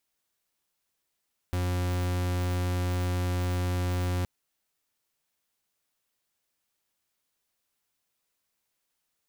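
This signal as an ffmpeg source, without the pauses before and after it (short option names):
-f lavfi -i "aevalsrc='0.0398*(2*lt(mod(89.8*t,1),0.42)-1)':d=2.72:s=44100"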